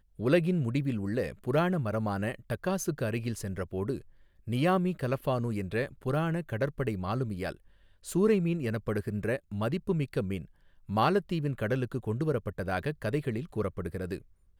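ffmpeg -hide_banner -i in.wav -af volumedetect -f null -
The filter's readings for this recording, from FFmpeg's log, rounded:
mean_volume: -30.8 dB
max_volume: -12.5 dB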